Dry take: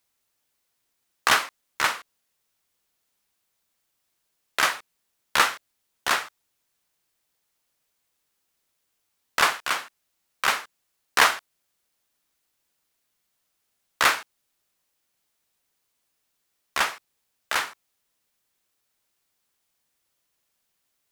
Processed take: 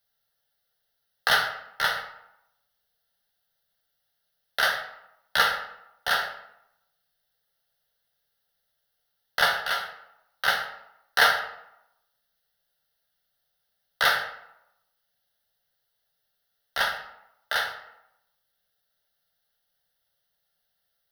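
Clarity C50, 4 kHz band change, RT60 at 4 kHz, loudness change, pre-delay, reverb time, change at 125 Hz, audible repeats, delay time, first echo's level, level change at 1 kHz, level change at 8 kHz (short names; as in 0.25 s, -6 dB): 7.5 dB, 0.0 dB, 0.50 s, -1.5 dB, 4 ms, 0.85 s, 0.0 dB, none, none, none, -2.0 dB, -8.5 dB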